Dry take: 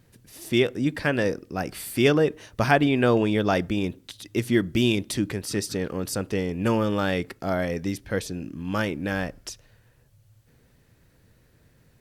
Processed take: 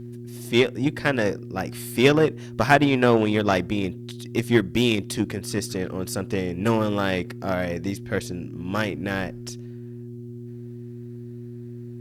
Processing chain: mains buzz 120 Hz, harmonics 3, -36 dBFS -3 dB/octave; Chebyshev shaper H 3 -24 dB, 5 -22 dB, 7 -21 dB, 8 -37 dB, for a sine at -4.5 dBFS; trim +3.5 dB

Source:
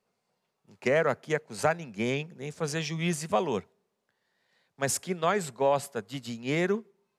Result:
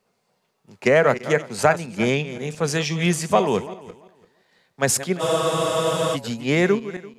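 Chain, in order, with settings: backward echo that repeats 170 ms, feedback 41%, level -13 dB; spectral freeze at 5.22 s, 0.92 s; trim +8.5 dB

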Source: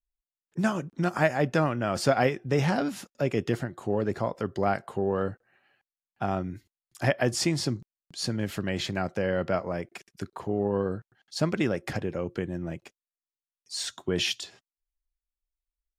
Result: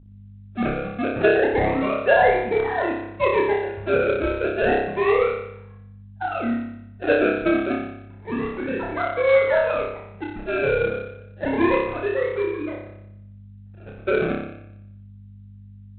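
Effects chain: formants replaced by sine waves; level-controlled noise filter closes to 1.8 kHz, open at -24.5 dBFS; in parallel at -5 dB: saturation -23 dBFS, distortion -11 dB; on the sum: decimation with a swept rate 31×, swing 100% 0.3 Hz; hum 50 Hz, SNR 21 dB; brick-wall FIR low-pass 2.8 kHz; on a send: flutter echo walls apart 5.1 m, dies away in 0.79 s; on the sum: IMA ADPCM 32 kbps 8 kHz

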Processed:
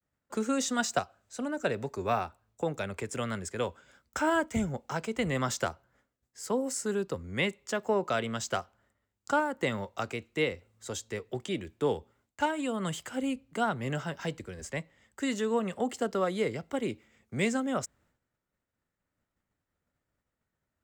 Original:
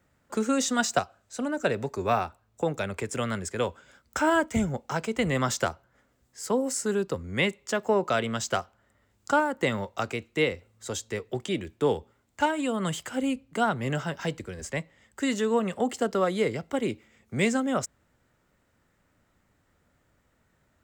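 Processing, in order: expander -59 dBFS; trim -4 dB

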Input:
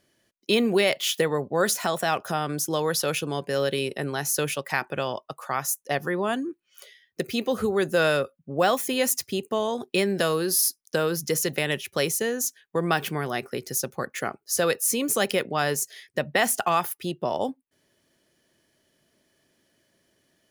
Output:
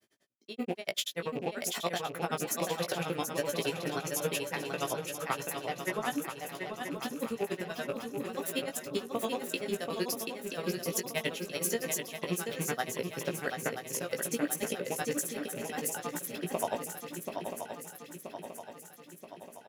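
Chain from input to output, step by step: rattle on loud lows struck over -34 dBFS, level -30 dBFS; high-pass 110 Hz; hum notches 60/120/180/240/300/360/420/480/540 Hz; compressor with a negative ratio -26 dBFS, ratio -0.5; granulator 70 ms, grains 10 per s, spray 13 ms, pitch spread up and down by 0 st; doubling 18 ms -5.5 dB; on a send: shuffle delay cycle 1019 ms, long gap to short 3:1, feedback 55%, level -6 dB; on the sum: speed mistake 24 fps film run at 25 fps; trim -3.5 dB

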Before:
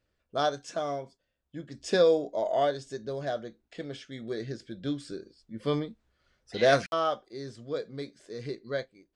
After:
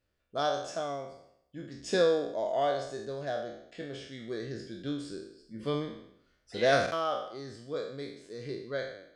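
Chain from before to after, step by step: spectral sustain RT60 0.72 s; trim -4 dB

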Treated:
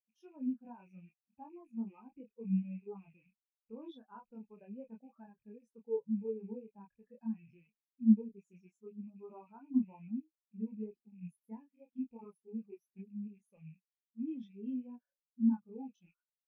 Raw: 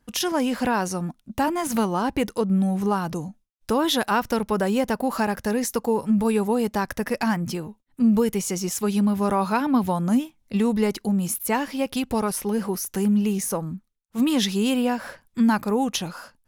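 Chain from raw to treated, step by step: rattle on loud lows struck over -36 dBFS, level -16 dBFS; chorus voices 6, 0.34 Hz, delay 27 ms, depth 5 ms; spectral contrast expander 2.5:1; trim -5 dB

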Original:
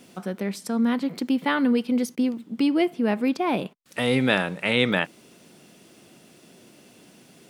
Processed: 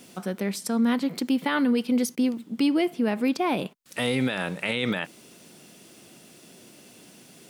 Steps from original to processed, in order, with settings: peak limiter -16 dBFS, peak gain reduction 11.5 dB; treble shelf 4.1 kHz +6 dB

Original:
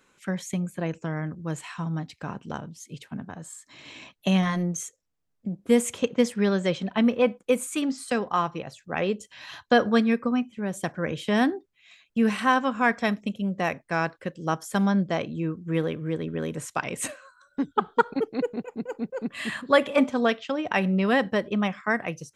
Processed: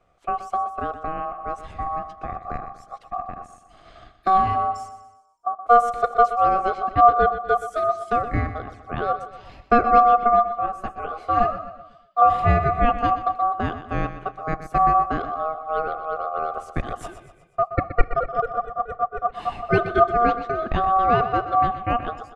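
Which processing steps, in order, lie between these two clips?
peaking EQ 230 Hz +13 dB 0.96 oct; ring modulator 950 Hz; tilt EQ -3.5 dB/octave; on a send: feedback delay 123 ms, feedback 47%, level -12 dB; 10.66–12.22 s: on the sum: three-phase chorus; trim -2.5 dB

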